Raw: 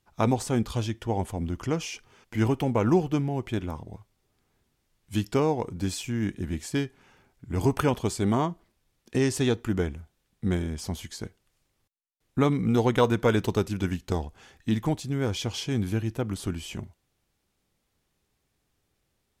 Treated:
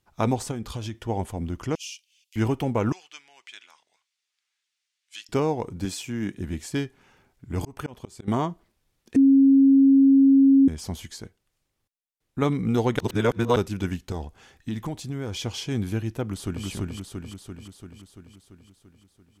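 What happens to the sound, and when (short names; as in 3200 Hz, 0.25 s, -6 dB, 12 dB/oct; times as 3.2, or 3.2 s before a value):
0.51–1 compressor, threshold -27 dBFS
1.75–2.36 elliptic high-pass 2700 Hz, stop band 60 dB
2.92–5.29 Butterworth band-pass 4100 Hz, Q 0.7
5.85–6.36 HPF 130 Hz
7.51–8.28 auto swell 0.406 s
9.16–10.68 bleep 272 Hz -12 dBFS
11.21–12.42 gain -4 dB
12.99–13.56 reverse
14.11–15.4 compressor 4:1, threshold -26 dBFS
16.22–16.65 echo throw 0.34 s, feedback 65%, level -1.5 dB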